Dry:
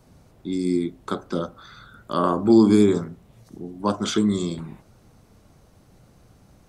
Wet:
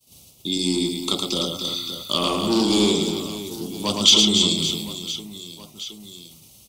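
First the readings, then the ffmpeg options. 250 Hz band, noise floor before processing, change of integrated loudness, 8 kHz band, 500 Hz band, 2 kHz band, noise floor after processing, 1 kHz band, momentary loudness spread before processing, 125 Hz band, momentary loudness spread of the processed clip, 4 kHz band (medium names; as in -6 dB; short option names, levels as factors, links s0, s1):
-2.5 dB, -56 dBFS, +1.5 dB, +15.0 dB, -2.0 dB, +4.5 dB, -51 dBFS, -1.5 dB, 22 LU, -1.5 dB, 20 LU, +19.5 dB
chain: -filter_complex "[0:a]highpass=54,agate=range=0.0224:threshold=0.00501:ratio=3:detection=peak,aemphasis=mode=production:type=75fm,acrossover=split=6100[s0][s1];[s1]acompressor=threshold=0.00501:ratio=4:attack=1:release=60[s2];[s0][s2]amix=inputs=2:normalize=0,asuperstop=centerf=1600:order=12:qfactor=3.7,asplit=2[s3][s4];[s4]acompressor=threshold=0.0282:ratio=6,volume=0.944[s5];[s3][s5]amix=inputs=2:normalize=0,asoftclip=type=tanh:threshold=0.335,aeval=exprs='0.316*(cos(1*acos(clip(val(0)/0.316,-1,1)))-cos(1*PI/2))+0.02*(cos(2*acos(clip(val(0)/0.316,-1,1)))-cos(2*PI/2))':c=same,volume=5.01,asoftclip=hard,volume=0.2,highshelf=f=2300:t=q:w=3:g=9,asplit=2[s6][s7];[s7]aecho=0:1:110|286|567.6|1018|1739:0.631|0.398|0.251|0.158|0.1[s8];[s6][s8]amix=inputs=2:normalize=0,volume=0.708"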